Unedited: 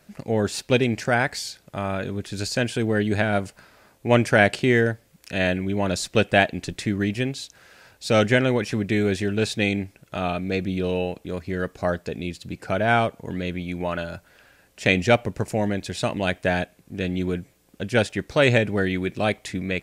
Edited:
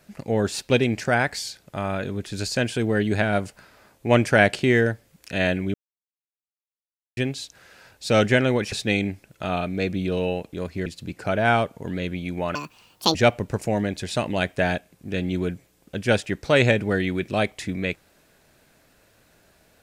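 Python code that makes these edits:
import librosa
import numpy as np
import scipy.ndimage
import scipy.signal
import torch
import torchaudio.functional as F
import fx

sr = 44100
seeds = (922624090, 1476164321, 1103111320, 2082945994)

y = fx.edit(x, sr, fx.silence(start_s=5.74, length_s=1.43),
    fx.cut(start_s=8.72, length_s=0.72),
    fx.cut(start_s=11.58, length_s=0.71),
    fx.speed_span(start_s=13.98, length_s=1.03, speed=1.73), tone=tone)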